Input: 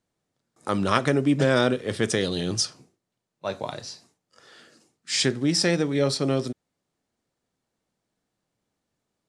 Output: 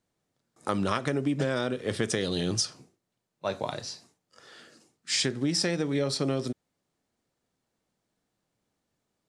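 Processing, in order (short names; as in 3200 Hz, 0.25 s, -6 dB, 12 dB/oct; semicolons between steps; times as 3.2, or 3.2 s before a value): compressor 10:1, threshold -23 dBFS, peak gain reduction 9.5 dB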